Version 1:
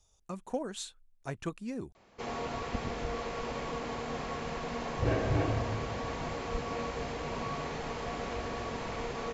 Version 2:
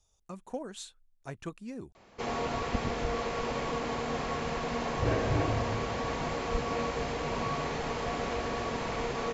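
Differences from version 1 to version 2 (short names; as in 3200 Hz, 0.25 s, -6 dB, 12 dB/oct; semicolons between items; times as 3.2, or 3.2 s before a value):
speech -3.0 dB; first sound +4.0 dB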